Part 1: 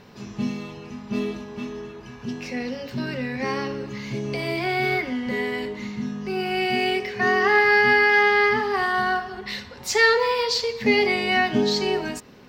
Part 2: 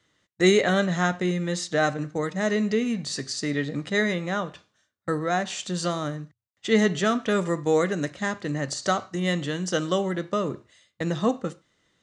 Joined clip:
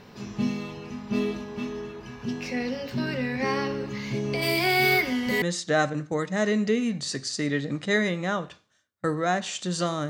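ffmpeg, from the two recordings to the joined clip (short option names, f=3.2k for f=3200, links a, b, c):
-filter_complex "[0:a]asplit=3[a][b][c];[a]afade=t=out:st=4.41:d=0.02[d];[b]aemphasis=mode=production:type=75kf,afade=t=in:st=4.41:d=0.02,afade=t=out:st=5.42:d=0.02[e];[c]afade=t=in:st=5.42:d=0.02[f];[d][e][f]amix=inputs=3:normalize=0,apad=whole_dur=10.09,atrim=end=10.09,atrim=end=5.422[g];[1:a]atrim=start=1.458:end=6.13[h];[g][h]acrossfade=d=0.004:c1=hsin:c2=hsin"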